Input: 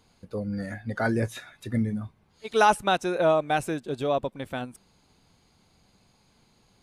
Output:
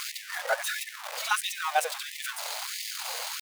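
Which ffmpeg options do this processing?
ffmpeg -i in.wav -af "aeval=exprs='val(0)+0.5*0.0531*sgn(val(0))':channel_layout=same,atempo=2,afftfilt=real='re*gte(b*sr/1024,440*pow(1800/440,0.5+0.5*sin(2*PI*1.5*pts/sr)))':imag='im*gte(b*sr/1024,440*pow(1800/440,0.5+0.5*sin(2*PI*1.5*pts/sr)))':win_size=1024:overlap=0.75" out.wav

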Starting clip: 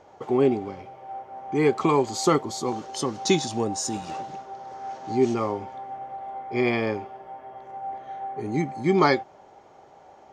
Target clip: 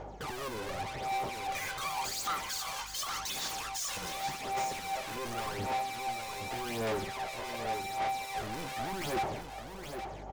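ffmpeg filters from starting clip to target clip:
ffmpeg -i in.wav -filter_complex "[0:a]asettb=1/sr,asplit=3[link_01][link_02][link_03];[link_01]atrim=end=1.474[link_04];[link_02]atrim=start=1.47:end=3.97,asetpts=PTS-STARTPTS,afade=type=in:duration=0.004:curve=qsin,afade=type=out:start_time=2.496:duration=0.004:curve=qsin,highpass=frequency=1200:width=0.5412,highpass=frequency=1200:width=1.3066[link_05];[link_03]atrim=start=3.966[link_06];[link_04][link_05]acrossfade=duration=0.004:curve1=hsin:curve2=qsin[link_07];[link_07][link_06]acrossfade=duration=0.004:curve1=qsin:curve2=hsin,agate=range=-16dB:threshold=-46dB:ratio=16:detection=peak,acontrast=86,aeval=exprs='0.708*sin(PI/2*2.82*val(0)/0.708)':channel_layout=same,aeval=exprs='val(0)+0.00224*(sin(2*PI*50*n/s)+sin(2*PI*2*50*n/s)/2+sin(2*PI*3*50*n/s)/3+sin(2*PI*4*50*n/s)/4+sin(2*PI*5*50*n/s)/5)':channel_layout=same,asoftclip=type=hard:threshold=-35dB,aphaser=in_gain=1:out_gain=1:delay=2:decay=0.59:speed=0.87:type=sinusoidal,aecho=1:1:819:0.422,volume=-3.5dB" out.wav

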